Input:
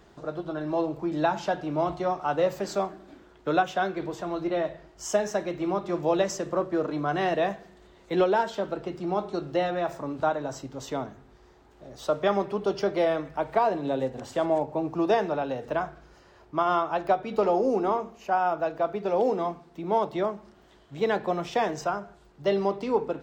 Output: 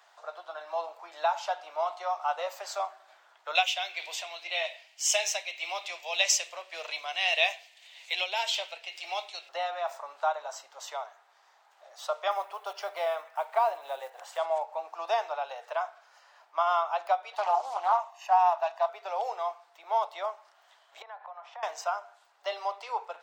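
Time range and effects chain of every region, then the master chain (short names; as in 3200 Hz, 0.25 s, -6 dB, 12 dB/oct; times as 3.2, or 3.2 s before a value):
3.55–9.49 resonant high shelf 1800 Hz +11 dB, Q 3 + tremolo 1.8 Hz, depth 49%
12.31–14.38 block floating point 7-bit + bell 5100 Hz -4 dB 1.2 oct
17.33–18.89 comb 1.1 ms, depth 89% + Doppler distortion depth 0.31 ms
21.02–21.63 band-pass 940 Hz, Q 1.6 + compressor, threshold -38 dBFS
whole clip: steep high-pass 670 Hz 36 dB/oct; dynamic EQ 1700 Hz, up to -7 dB, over -51 dBFS, Q 4.2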